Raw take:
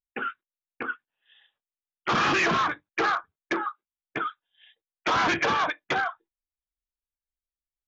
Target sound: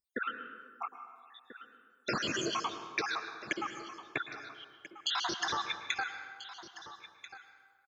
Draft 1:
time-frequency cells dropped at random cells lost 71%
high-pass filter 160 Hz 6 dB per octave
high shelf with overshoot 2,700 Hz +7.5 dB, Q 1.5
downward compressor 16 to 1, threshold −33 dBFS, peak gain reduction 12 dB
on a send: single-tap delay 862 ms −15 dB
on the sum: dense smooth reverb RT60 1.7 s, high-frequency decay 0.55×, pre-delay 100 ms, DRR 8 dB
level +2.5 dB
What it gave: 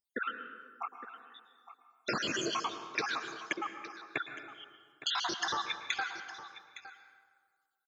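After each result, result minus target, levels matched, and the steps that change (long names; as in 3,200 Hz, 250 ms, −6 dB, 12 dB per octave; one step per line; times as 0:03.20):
echo 476 ms early; 125 Hz band −3.0 dB
change: single-tap delay 1,338 ms −15 dB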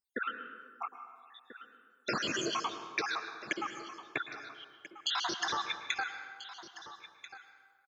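125 Hz band −2.5 dB
change: high-pass filter 52 Hz 6 dB per octave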